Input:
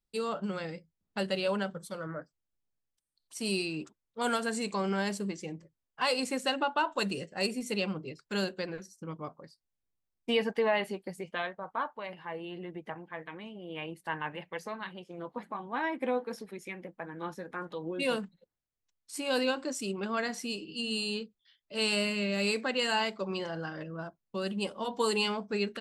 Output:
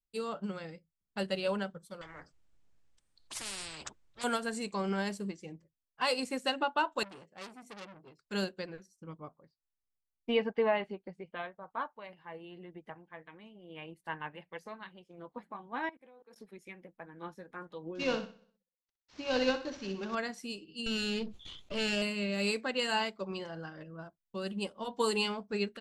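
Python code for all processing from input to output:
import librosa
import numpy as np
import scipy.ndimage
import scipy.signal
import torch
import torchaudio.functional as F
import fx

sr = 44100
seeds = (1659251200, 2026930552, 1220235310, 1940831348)

y = fx.chain(x, sr, fx.lowpass(hz=7900.0, slope=24),
    fx.peak_eq(hz=5100.0, db=-4.5, octaves=1.4),
    fx.spectral_comp(ratio=10.0), at=(2.01, 4.24))
y = fx.chain(y, sr, fx.highpass(hz=180.0, slope=6),
    fx.high_shelf(hz=2000.0, db=-6.0),
    fx.transformer_sat(knee_hz=3000.0), at=(7.03, 8.19))
y = fx.chain(y, sr, fx.lowpass(hz=2800.0, slope=12),
    fx.peak_eq(hz=1800.0, db=-4.0, octaves=0.21), at=(9.2, 11.58))
y = fx.chain(y, sr, fx.highpass(hz=280.0, slope=12),
    fx.level_steps(step_db=23), at=(15.89, 16.36))
y = fx.chain(y, sr, fx.cvsd(bps=32000),
    fx.echo_feedback(ms=62, feedback_pct=50, wet_db=-8.5), at=(17.95, 20.15))
y = fx.chain(y, sr, fx.lower_of_two(delay_ms=0.3),
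    fx.lowpass(hz=5400.0, slope=12),
    fx.env_flatten(amount_pct=70), at=(20.86, 22.02))
y = fx.low_shelf(y, sr, hz=73.0, db=9.0)
y = fx.upward_expand(y, sr, threshold_db=-48.0, expansion=1.5)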